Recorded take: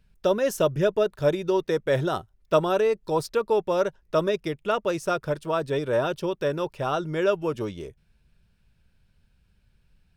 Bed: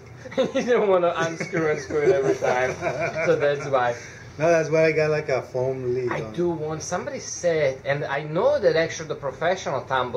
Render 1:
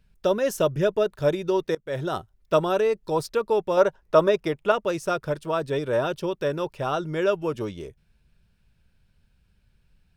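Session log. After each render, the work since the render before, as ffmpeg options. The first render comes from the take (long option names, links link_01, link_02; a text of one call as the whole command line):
ffmpeg -i in.wav -filter_complex "[0:a]asettb=1/sr,asplit=3[link_01][link_02][link_03];[link_01]atrim=end=3.774[link_04];[link_02]atrim=start=3.77:end=4.72,asetpts=PTS-STARTPTS,afade=type=in:duration=0.004:curve=qsin,afade=type=out:start_time=0.946:duration=0.004:curve=qsin,equalizer=frequency=850:width=0.66:gain=7.5[link_05];[link_03]atrim=start=4.716[link_06];[link_04][link_05]acrossfade=duration=0.004:curve1=hsin:curve2=qsin[link_07];[link_07][link_06]acrossfade=duration=0.004:curve1=qsin:curve2=hsin,asplit=2[link_08][link_09];[link_08]atrim=end=1.75,asetpts=PTS-STARTPTS,afade=type=out:start_time=1.746:duration=0.004:curve=hsin:silence=0.0668344[link_10];[link_09]atrim=start=1.75,asetpts=PTS-STARTPTS,afade=type=in:duration=0.43:silence=0.0668344[link_11];[link_10][link_11]concat=n=2:v=0:a=1" out.wav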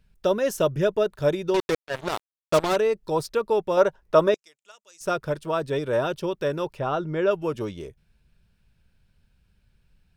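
ffmpeg -i in.wav -filter_complex "[0:a]asettb=1/sr,asplit=3[link_01][link_02][link_03];[link_01]atrim=end=1.544[link_04];[link_02]atrim=start=1.54:end=2.76,asetpts=PTS-STARTPTS,afade=type=in:duration=0.004:curve=qsin,afade=type=out:start_time=1.216:duration=0.004:curve=qsin,acrusher=bits=3:mix=0:aa=0.5[link_05];[link_03]atrim=start=2.756[link_06];[link_04][link_05]acrossfade=duration=0.004:curve1=hsin:curve2=qsin[link_07];[link_07][link_06]acrossfade=duration=0.004:curve1=qsin:curve2=hsin,asettb=1/sr,asplit=3[link_08][link_09][link_10];[link_08]atrim=end=4.344[link_11];[link_09]atrim=start=4.34:end=5.01,asetpts=PTS-STARTPTS,afade=type=in:duration=0.004:curve=qsin,afade=type=out:start_time=0.666:duration=0.004:curve=qsin,bandpass=frequency=7100:width_type=q:width=3.6[link_12];[link_10]atrim=start=5.006[link_13];[link_11][link_12]acrossfade=duration=0.004:curve1=hsin:curve2=qsin[link_14];[link_14][link_13]acrossfade=duration=0.004:curve1=qsin:curve2=hsin,asettb=1/sr,asplit=3[link_15][link_16][link_17];[link_15]atrim=end=6.794[link_18];[link_16]atrim=start=6.79:end=7.31,asetpts=PTS-STARTPTS,afade=type=in:duration=0.004:curve=qsin,afade=type=out:start_time=0.516:duration=0.004:curve=qsin,aemphasis=mode=reproduction:type=75fm[link_19];[link_17]atrim=start=7.306[link_20];[link_18][link_19]acrossfade=duration=0.004:curve1=hsin:curve2=qsin[link_21];[link_21][link_20]acrossfade=duration=0.004:curve1=qsin:curve2=hsin" out.wav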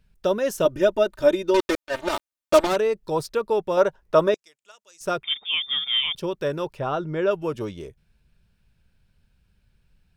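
ffmpeg -i in.wav -filter_complex "[0:a]asettb=1/sr,asplit=3[link_01][link_02][link_03];[link_01]atrim=end=0.654[link_04];[link_02]atrim=start=0.65:end=2.67,asetpts=PTS-STARTPTS,afade=type=in:duration=0.004:curve=qsin,afade=type=out:start_time=2.016:duration=0.004:curve=qsin,aecho=1:1:3.3:0.93,atrim=end_sample=89082[link_05];[link_03]atrim=start=2.666[link_06];[link_04][link_05]acrossfade=duration=0.004:curve1=hsin:curve2=qsin[link_07];[link_07][link_06]acrossfade=duration=0.004:curve1=qsin:curve2=hsin,asettb=1/sr,asplit=3[link_08][link_09][link_10];[link_08]atrim=end=5.234[link_11];[link_09]atrim=start=5.23:end=6.15,asetpts=PTS-STARTPTS,afade=type=in:duration=0.004:curve=qsin,afade=type=out:start_time=0.916:duration=0.004:curve=qsin,lowpass=frequency=3100:width_type=q:width=0.5098,lowpass=frequency=3100:width_type=q:width=0.6013,lowpass=frequency=3100:width_type=q:width=0.9,lowpass=frequency=3100:width_type=q:width=2.563,afreqshift=-3700[link_12];[link_10]atrim=start=6.146[link_13];[link_11][link_12]acrossfade=duration=0.004:curve1=hsin:curve2=qsin[link_14];[link_14][link_13]acrossfade=duration=0.004:curve1=qsin:curve2=hsin" out.wav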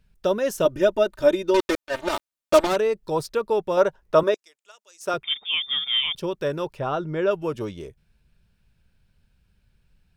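ffmpeg -i in.wav -filter_complex "[0:a]asettb=1/sr,asplit=3[link_01][link_02][link_03];[link_01]atrim=end=4.234[link_04];[link_02]atrim=start=4.23:end=5.14,asetpts=PTS-STARTPTS,afade=type=in:duration=0.004:curve=qsin,afade=type=out:start_time=0.906:duration=0.004:curve=qsin,highpass=280[link_05];[link_03]atrim=start=5.136[link_06];[link_04][link_05]acrossfade=duration=0.004:curve1=hsin:curve2=qsin[link_07];[link_07][link_06]acrossfade=duration=0.004:curve1=qsin:curve2=hsin" out.wav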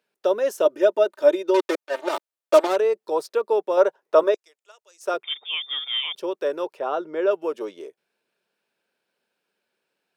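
ffmpeg -i in.wav -af "highpass=frequency=370:width=0.5412,highpass=frequency=370:width=1.3066,tiltshelf=frequency=970:gain=4" out.wav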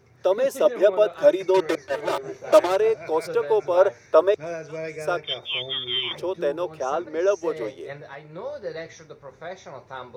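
ffmpeg -i in.wav -i bed.wav -filter_complex "[1:a]volume=-13.5dB[link_01];[0:a][link_01]amix=inputs=2:normalize=0" out.wav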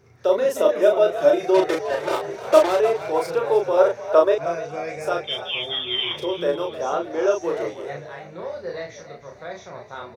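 ffmpeg -i in.wav -filter_complex "[0:a]asplit=2[link_01][link_02];[link_02]adelay=35,volume=-3.5dB[link_03];[link_01][link_03]amix=inputs=2:normalize=0,asplit=6[link_04][link_05][link_06][link_07][link_08][link_09];[link_05]adelay=307,afreqshift=58,volume=-13dB[link_10];[link_06]adelay=614,afreqshift=116,volume=-19.7dB[link_11];[link_07]adelay=921,afreqshift=174,volume=-26.5dB[link_12];[link_08]adelay=1228,afreqshift=232,volume=-33.2dB[link_13];[link_09]adelay=1535,afreqshift=290,volume=-40dB[link_14];[link_04][link_10][link_11][link_12][link_13][link_14]amix=inputs=6:normalize=0" out.wav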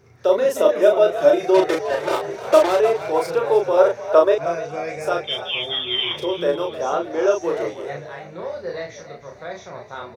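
ffmpeg -i in.wav -af "volume=2dB,alimiter=limit=-3dB:level=0:latency=1" out.wav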